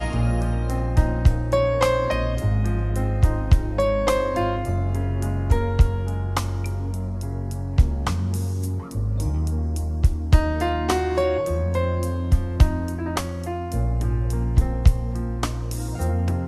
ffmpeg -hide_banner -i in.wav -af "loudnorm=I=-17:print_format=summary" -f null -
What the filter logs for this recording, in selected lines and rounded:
Input Integrated:    -23.5 LUFS
Input True Peak:      -2.7 dBTP
Input LRA:             2.5 LU
Input Threshold:     -33.5 LUFS